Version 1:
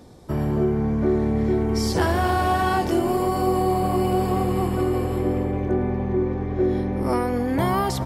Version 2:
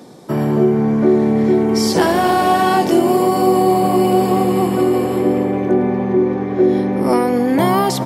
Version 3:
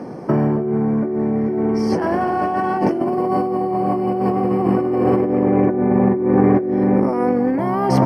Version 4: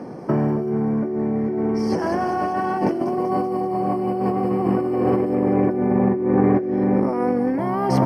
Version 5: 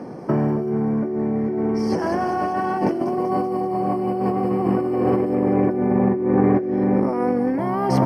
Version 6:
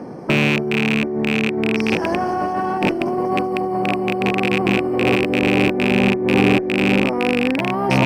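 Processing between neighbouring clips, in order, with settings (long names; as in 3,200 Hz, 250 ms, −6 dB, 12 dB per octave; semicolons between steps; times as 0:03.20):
high-pass filter 150 Hz 24 dB per octave; dynamic equaliser 1,400 Hz, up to −4 dB, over −37 dBFS, Q 1.7; level +8.5 dB
compressor whose output falls as the input rises −21 dBFS, ratio −1; moving average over 12 samples; level +3.5 dB
delay with a high-pass on its return 192 ms, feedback 64%, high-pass 4,900 Hz, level −3 dB; level −3 dB
no processing that can be heard
loose part that buzzes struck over −23 dBFS, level −9 dBFS; harmonic generator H 8 −31 dB, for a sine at −3 dBFS; level +1.5 dB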